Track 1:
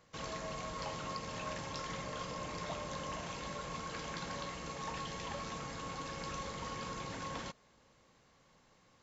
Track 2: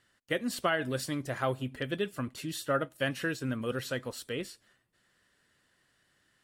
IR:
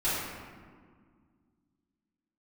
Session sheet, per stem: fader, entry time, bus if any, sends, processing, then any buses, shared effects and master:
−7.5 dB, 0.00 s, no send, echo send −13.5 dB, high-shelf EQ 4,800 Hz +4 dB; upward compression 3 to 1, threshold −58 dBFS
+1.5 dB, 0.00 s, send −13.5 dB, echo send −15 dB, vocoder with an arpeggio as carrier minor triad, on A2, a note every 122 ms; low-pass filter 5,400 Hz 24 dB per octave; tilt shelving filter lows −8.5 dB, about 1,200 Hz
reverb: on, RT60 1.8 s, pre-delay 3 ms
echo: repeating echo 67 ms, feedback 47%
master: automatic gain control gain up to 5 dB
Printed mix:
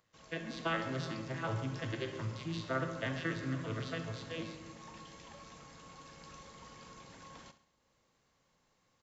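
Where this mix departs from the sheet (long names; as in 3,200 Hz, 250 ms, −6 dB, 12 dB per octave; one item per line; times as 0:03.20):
stem 1 −7.5 dB → −16.5 dB
stem 2 +1.5 dB → −5.5 dB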